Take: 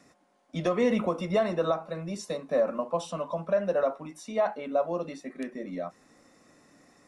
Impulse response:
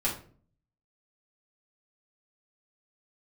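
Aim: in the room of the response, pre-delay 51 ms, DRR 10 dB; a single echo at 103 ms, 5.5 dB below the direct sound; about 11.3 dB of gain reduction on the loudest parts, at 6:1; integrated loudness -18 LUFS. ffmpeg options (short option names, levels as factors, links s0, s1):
-filter_complex "[0:a]acompressor=threshold=0.0224:ratio=6,aecho=1:1:103:0.531,asplit=2[s0][s1];[1:a]atrim=start_sample=2205,adelay=51[s2];[s1][s2]afir=irnorm=-1:irlink=0,volume=0.133[s3];[s0][s3]amix=inputs=2:normalize=0,volume=8.41"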